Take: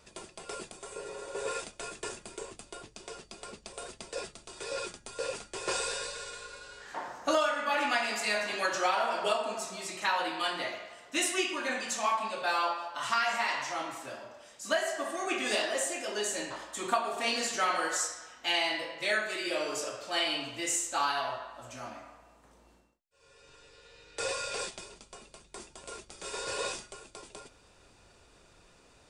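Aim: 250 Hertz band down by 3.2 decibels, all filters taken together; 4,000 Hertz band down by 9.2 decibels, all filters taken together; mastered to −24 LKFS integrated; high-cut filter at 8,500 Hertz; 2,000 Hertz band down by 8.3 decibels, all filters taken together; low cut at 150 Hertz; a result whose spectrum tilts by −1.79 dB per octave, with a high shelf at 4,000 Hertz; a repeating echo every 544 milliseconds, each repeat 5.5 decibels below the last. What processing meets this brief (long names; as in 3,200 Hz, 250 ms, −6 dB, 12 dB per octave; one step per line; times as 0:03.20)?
high-pass filter 150 Hz
low-pass filter 8,500 Hz
parametric band 250 Hz −4 dB
parametric band 2,000 Hz −8.5 dB
high-shelf EQ 4,000 Hz −6.5 dB
parametric band 4,000 Hz −5 dB
repeating echo 544 ms, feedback 53%, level −5.5 dB
level +12 dB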